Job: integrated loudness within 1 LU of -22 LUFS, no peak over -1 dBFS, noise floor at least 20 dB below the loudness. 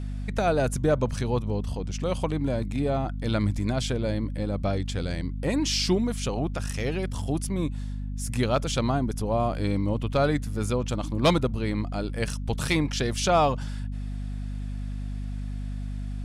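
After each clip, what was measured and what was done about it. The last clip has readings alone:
hum 50 Hz; highest harmonic 250 Hz; hum level -29 dBFS; loudness -27.5 LUFS; peak level -11.5 dBFS; loudness target -22.0 LUFS
-> hum notches 50/100/150/200/250 Hz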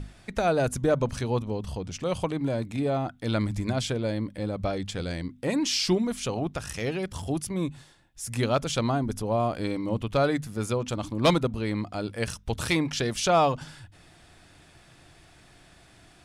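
hum not found; loudness -28.0 LUFS; peak level -11.5 dBFS; loudness target -22.0 LUFS
-> trim +6 dB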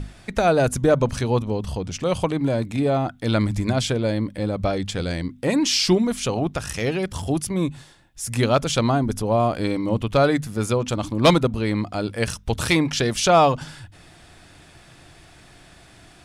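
loudness -22.0 LUFS; peak level -5.5 dBFS; noise floor -50 dBFS

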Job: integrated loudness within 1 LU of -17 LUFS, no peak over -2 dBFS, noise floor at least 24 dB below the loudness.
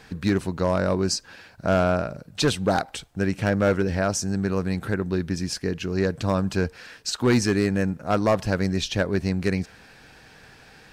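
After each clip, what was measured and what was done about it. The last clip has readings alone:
clipped samples 0.6%; clipping level -13.5 dBFS; loudness -24.5 LUFS; peak level -13.5 dBFS; loudness target -17.0 LUFS
-> clip repair -13.5 dBFS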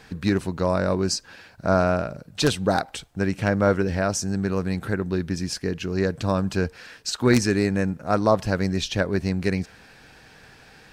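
clipped samples 0.0%; loudness -24.0 LUFS; peak level -4.5 dBFS; loudness target -17.0 LUFS
-> trim +7 dB; peak limiter -2 dBFS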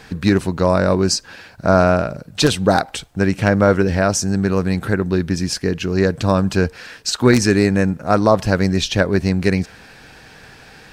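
loudness -17.5 LUFS; peak level -2.0 dBFS; noise floor -44 dBFS

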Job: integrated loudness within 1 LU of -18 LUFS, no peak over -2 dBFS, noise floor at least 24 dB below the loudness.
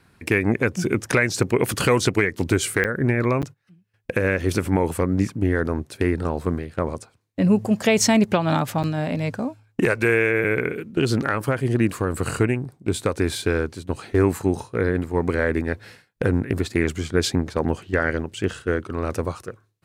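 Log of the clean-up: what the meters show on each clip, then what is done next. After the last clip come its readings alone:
dropouts 3; longest dropout 8.1 ms; loudness -22.5 LUFS; peak level -7.0 dBFS; loudness target -18.0 LUFS
-> interpolate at 2.84/3.42/8.83 s, 8.1 ms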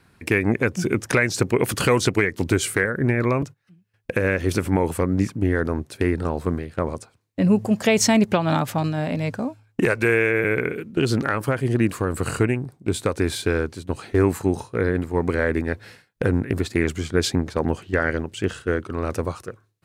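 dropouts 0; loudness -22.5 LUFS; peak level -7.0 dBFS; loudness target -18.0 LUFS
-> trim +4.5 dB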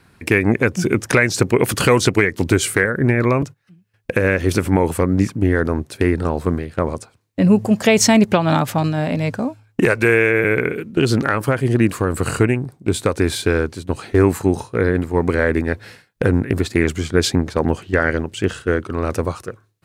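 loudness -18.0 LUFS; peak level -2.5 dBFS; noise floor -59 dBFS

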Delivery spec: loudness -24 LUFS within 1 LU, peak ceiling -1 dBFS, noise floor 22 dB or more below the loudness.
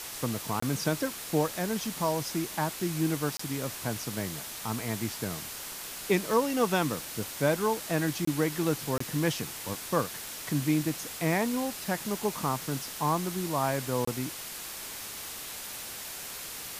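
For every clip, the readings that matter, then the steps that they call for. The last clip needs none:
dropouts 5; longest dropout 24 ms; noise floor -40 dBFS; noise floor target -53 dBFS; loudness -31.0 LUFS; peak level -12.5 dBFS; loudness target -24.0 LUFS
-> interpolate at 0.60/3.37/8.25/8.98/14.05 s, 24 ms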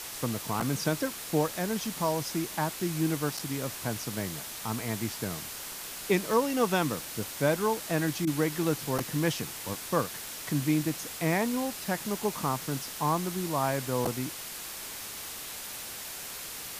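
dropouts 0; noise floor -40 dBFS; noise floor target -53 dBFS
-> noise reduction 13 dB, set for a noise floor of -40 dBFS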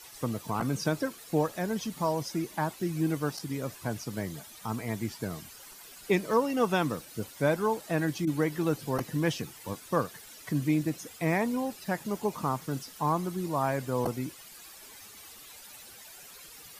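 noise floor -50 dBFS; noise floor target -53 dBFS
-> noise reduction 6 dB, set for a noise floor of -50 dBFS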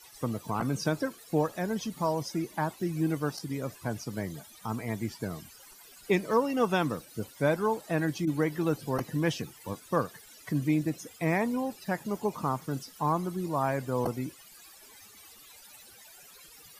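noise floor -53 dBFS; noise floor target -54 dBFS
-> noise reduction 6 dB, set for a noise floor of -53 dBFS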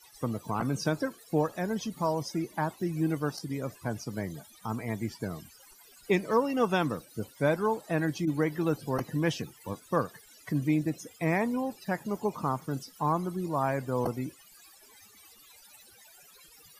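noise floor -57 dBFS; loudness -31.5 LUFS; peak level -13.0 dBFS; loudness target -24.0 LUFS
-> trim +7.5 dB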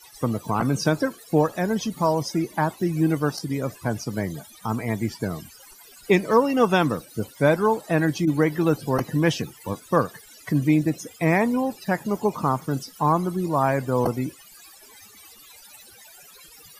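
loudness -24.0 LUFS; peak level -5.5 dBFS; noise floor -49 dBFS

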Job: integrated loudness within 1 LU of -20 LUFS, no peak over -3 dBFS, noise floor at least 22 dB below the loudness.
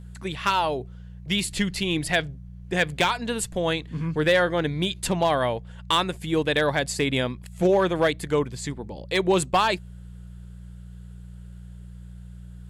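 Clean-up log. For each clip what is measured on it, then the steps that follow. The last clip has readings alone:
clipped samples 0.3%; clipping level -13.0 dBFS; hum 60 Hz; highest harmonic 180 Hz; hum level -38 dBFS; loudness -24.5 LUFS; peak level -13.0 dBFS; loudness target -20.0 LUFS
-> clip repair -13 dBFS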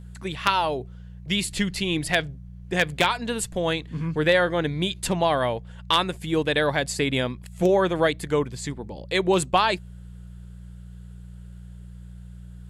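clipped samples 0.0%; hum 60 Hz; highest harmonic 180 Hz; hum level -38 dBFS
-> de-hum 60 Hz, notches 3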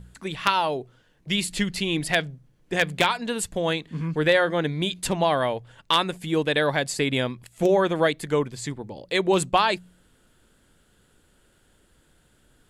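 hum not found; loudness -24.5 LUFS; peak level -4.0 dBFS; loudness target -20.0 LUFS
-> trim +4.5 dB; peak limiter -3 dBFS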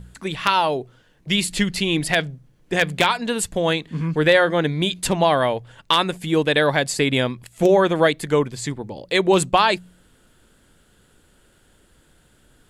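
loudness -20.0 LUFS; peak level -3.0 dBFS; noise floor -58 dBFS

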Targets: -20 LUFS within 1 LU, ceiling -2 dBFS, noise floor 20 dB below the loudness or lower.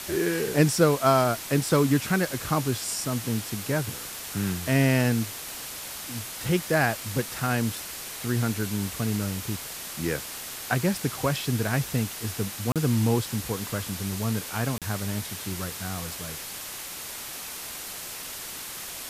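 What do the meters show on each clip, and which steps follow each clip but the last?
dropouts 2; longest dropout 37 ms; noise floor -38 dBFS; noise floor target -48 dBFS; loudness -27.5 LUFS; peak level -8.0 dBFS; loudness target -20.0 LUFS
-> interpolate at 12.72/14.78 s, 37 ms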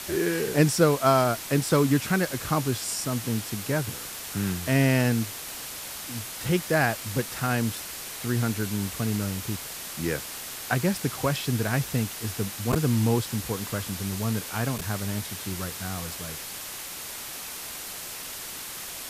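dropouts 0; noise floor -38 dBFS; noise floor target -48 dBFS
-> noise reduction 10 dB, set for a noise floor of -38 dBFS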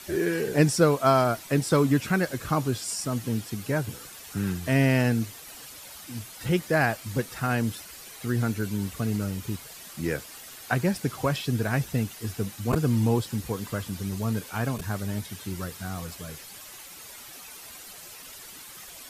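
noise floor -45 dBFS; noise floor target -47 dBFS
-> noise reduction 6 dB, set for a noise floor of -45 dBFS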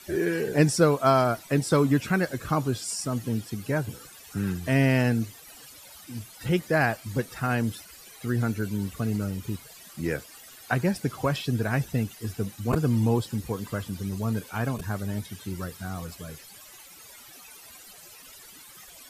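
noise floor -49 dBFS; loudness -27.0 LUFS; peak level -8.0 dBFS; loudness target -20.0 LUFS
-> trim +7 dB; peak limiter -2 dBFS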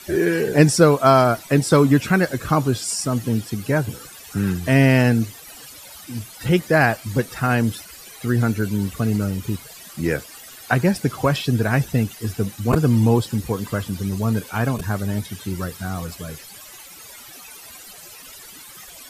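loudness -20.5 LUFS; peak level -2.0 dBFS; noise floor -42 dBFS

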